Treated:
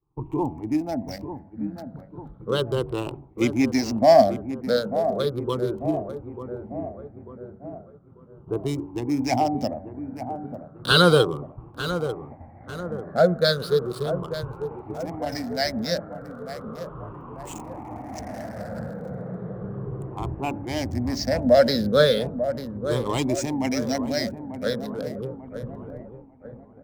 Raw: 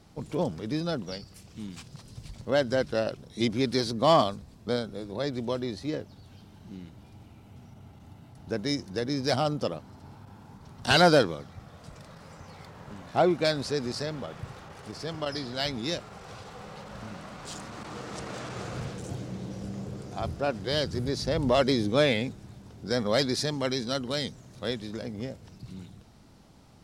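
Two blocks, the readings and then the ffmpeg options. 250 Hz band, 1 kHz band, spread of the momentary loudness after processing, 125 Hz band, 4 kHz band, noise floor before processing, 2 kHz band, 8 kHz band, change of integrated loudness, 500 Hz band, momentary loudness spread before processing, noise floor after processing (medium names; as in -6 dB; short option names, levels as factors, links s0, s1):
+5.0 dB, +4.0 dB, 20 LU, +4.0 dB, +2.5 dB, -52 dBFS, +3.0 dB, +3.0 dB, +4.0 dB, +5.5 dB, 21 LU, -48 dBFS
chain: -filter_complex "[0:a]afftfilt=real='re*pow(10,21/40*sin(2*PI*(0.66*log(max(b,1)*sr/1024/100)/log(2)-(-0.35)*(pts-256)/sr)))':imag='im*pow(10,21/40*sin(2*PI*(0.66*log(max(b,1)*sr/1024/100)/log(2)-(-0.35)*(pts-256)/sr)))':win_size=1024:overlap=0.75,asplit=2[s0][s1];[s1]adelay=893,lowpass=f=3800:p=1,volume=0.316,asplit=2[s2][s3];[s3]adelay=893,lowpass=f=3800:p=1,volume=0.54,asplit=2[s4][s5];[s5]adelay=893,lowpass=f=3800:p=1,volume=0.54,asplit=2[s6][s7];[s7]adelay=893,lowpass=f=3800:p=1,volume=0.54,asplit=2[s8][s9];[s9]adelay=893,lowpass=f=3800:p=1,volume=0.54,asplit=2[s10][s11];[s11]adelay=893,lowpass=f=3800:p=1,volume=0.54[s12];[s0][s2][s4][s6][s8][s10][s12]amix=inputs=7:normalize=0,agate=range=0.0224:threshold=0.0158:ratio=3:detection=peak,bandreject=f=94.83:t=h:w=4,bandreject=f=189.66:t=h:w=4,bandreject=f=284.49:t=h:w=4,bandreject=f=379.32:t=h:w=4,bandreject=f=474.15:t=h:w=4,bandreject=f=568.98:t=h:w=4,bandreject=f=663.81:t=h:w=4,bandreject=f=758.64:t=h:w=4,bandreject=f=853.47:t=h:w=4,bandreject=f=948.3:t=h:w=4,acrossover=split=520|1400[s13][s14][s15];[s15]aeval=exprs='sgn(val(0))*max(abs(val(0))-0.0133,0)':c=same[s16];[s13][s14][s16]amix=inputs=3:normalize=0"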